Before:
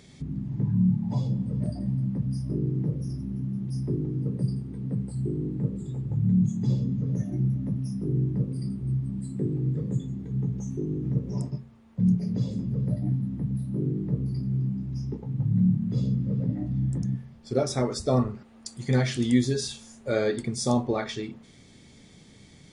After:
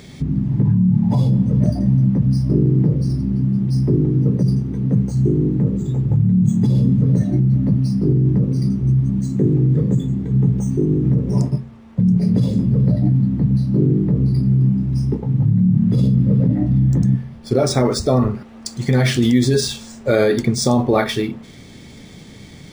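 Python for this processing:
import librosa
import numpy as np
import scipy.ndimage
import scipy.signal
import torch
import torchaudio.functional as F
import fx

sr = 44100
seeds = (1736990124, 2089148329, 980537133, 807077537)

p1 = fx.over_compress(x, sr, threshold_db=-26.0, ratio=-0.5)
p2 = x + (p1 * librosa.db_to_amplitude(2.0))
p3 = np.interp(np.arange(len(p2)), np.arange(len(p2))[::3], p2[::3])
y = p3 * librosa.db_to_amplitude(5.0)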